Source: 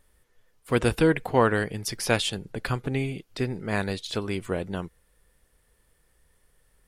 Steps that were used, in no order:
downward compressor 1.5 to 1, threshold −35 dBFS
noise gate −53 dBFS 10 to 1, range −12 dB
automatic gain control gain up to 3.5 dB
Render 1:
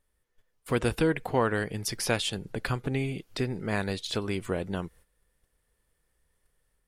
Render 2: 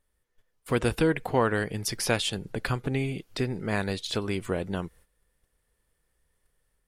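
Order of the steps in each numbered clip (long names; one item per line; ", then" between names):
automatic gain control, then downward compressor, then noise gate
downward compressor, then automatic gain control, then noise gate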